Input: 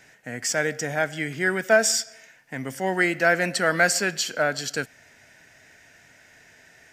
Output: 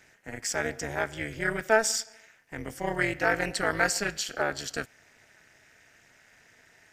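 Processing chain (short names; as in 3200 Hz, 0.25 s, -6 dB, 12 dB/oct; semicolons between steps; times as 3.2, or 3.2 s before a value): AM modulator 220 Hz, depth 90%; gain -1.5 dB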